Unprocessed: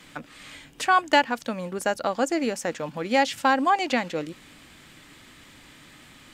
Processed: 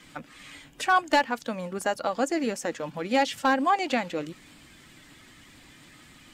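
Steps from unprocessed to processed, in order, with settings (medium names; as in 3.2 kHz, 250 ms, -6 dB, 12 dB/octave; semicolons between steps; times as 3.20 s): coarse spectral quantiser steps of 15 dB; overload inside the chain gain 12 dB; trim -1.5 dB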